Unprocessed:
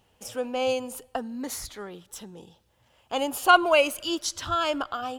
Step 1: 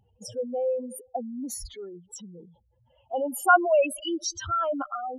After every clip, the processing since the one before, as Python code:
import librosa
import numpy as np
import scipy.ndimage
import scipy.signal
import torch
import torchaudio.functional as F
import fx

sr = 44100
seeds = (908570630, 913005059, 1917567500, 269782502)

y = fx.spec_expand(x, sr, power=3.4)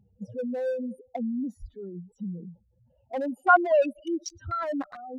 y = fx.wiener(x, sr, points=41)
y = fx.peak_eq(y, sr, hz=190.0, db=13.0, octaves=0.66)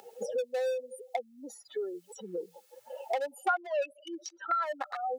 y = scipy.signal.sosfilt(scipy.signal.butter(4, 540.0, 'highpass', fs=sr, output='sos'), x)
y = y + 0.49 * np.pad(y, (int(2.3 * sr / 1000.0), 0))[:len(y)]
y = fx.band_squash(y, sr, depth_pct=100)